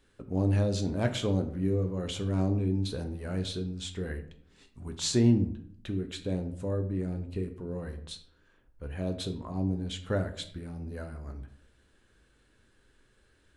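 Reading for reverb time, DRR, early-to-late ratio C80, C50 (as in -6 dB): 0.60 s, 6.5 dB, 15.0 dB, 11.5 dB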